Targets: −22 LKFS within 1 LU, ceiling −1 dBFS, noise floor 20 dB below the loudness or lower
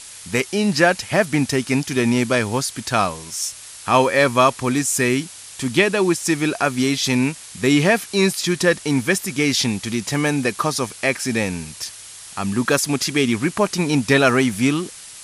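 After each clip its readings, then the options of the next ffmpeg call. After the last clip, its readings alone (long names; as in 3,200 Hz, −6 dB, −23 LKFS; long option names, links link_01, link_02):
background noise floor −39 dBFS; target noise floor −40 dBFS; integrated loudness −19.5 LKFS; sample peak −1.5 dBFS; target loudness −22.0 LKFS
→ -af "afftdn=noise_reduction=6:noise_floor=-39"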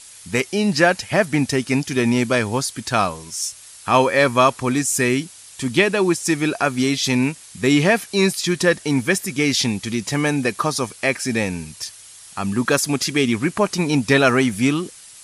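background noise floor −43 dBFS; integrated loudness −19.5 LKFS; sample peak −1.5 dBFS; target loudness −22.0 LKFS
→ -af "volume=-2.5dB"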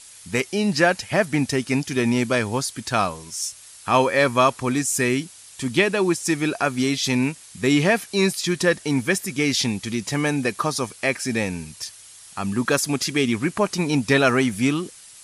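integrated loudness −22.0 LKFS; sample peak −4.0 dBFS; background noise floor −45 dBFS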